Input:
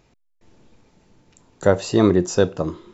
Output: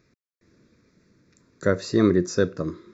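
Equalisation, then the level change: high-pass 140 Hz 6 dB/octave; treble shelf 6.2 kHz -6 dB; static phaser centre 3 kHz, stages 6; 0.0 dB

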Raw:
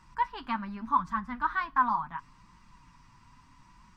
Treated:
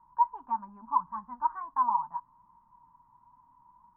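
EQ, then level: four-pole ladder low-pass 990 Hz, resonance 80%; bass shelf 86 Hz -6 dB; 0.0 dB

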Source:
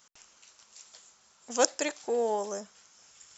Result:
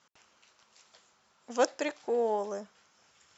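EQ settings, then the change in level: high-pass 68 Hz; low-pass 3.5 kHz 6 dB/octave; distance through air 74 m; 0.0 dB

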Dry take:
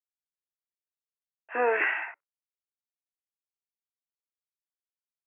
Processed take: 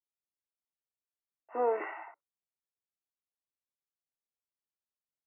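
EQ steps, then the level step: Savitzky-Golay filter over 65 samples; -3.0 dB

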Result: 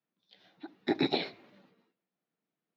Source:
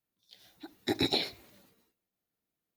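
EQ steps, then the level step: Chebyshev high-pass 160 Hz, order 3; distance through air 300 m; +3.5 dB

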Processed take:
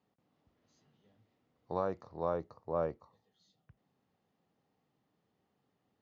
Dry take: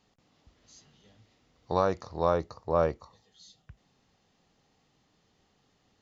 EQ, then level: high-pass 110 Hz 12 dB/octave; low-pass 1.2 kHz 6 dB/octave; -7.0 dB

